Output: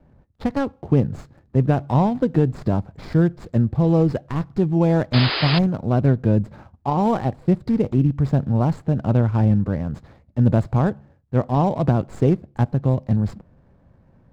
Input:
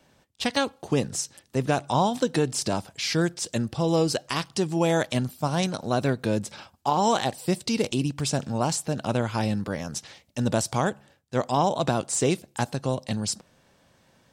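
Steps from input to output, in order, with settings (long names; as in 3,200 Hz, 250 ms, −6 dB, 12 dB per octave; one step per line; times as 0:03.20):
running median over 15 samples
RIAA equalisation playback
sound drawn into the spectrogram noise, 0:05.13–0:05.59, 290–5,100 Hz −24 dBFS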